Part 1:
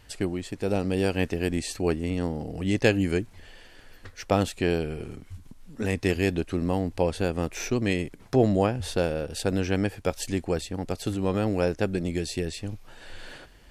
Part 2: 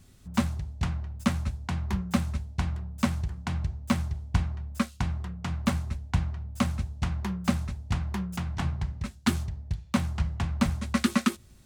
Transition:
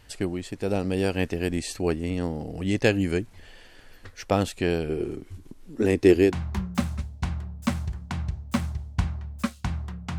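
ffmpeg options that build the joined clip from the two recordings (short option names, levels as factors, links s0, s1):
-filter_complex "[0:a]asettb=1/sr,asplit=3[s0][s1][s2];[s0]atrim=end=4.894[s3];[s1]atrim=start=4.89:end=6.37,asetpts=PTS-STARTPTS,afade=t=in:d=0.004:c=qsin,afade=t=out:st=1.476:d=0.004:c=qsin,equalizer=f=350:t=o:w=0.74:g=13[s4];[s2]atrim=start=6.366[s5];[s3][s4]acrossfade=d=0.004:c1=hsin:c2=qsin[s6];[s6][s5]acrossfade=d=0.004:c1=qsin:c2=hsin,apad=whole_dur=10.18,atrim=end=10.18,atrim=end=6.37,asetpts=PTS-STARTPTS[s7];[1:a]atrim=start=1.57:end=5.54,asetpts=PTS-STARTPTS[s8];[s7][s8]acrossfade=d=0.16:c1=tri:c2=tri"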